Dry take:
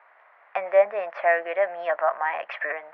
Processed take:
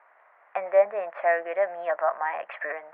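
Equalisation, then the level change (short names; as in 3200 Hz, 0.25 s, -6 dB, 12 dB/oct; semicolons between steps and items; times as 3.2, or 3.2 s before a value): air absorption 450 m; 0.0 dB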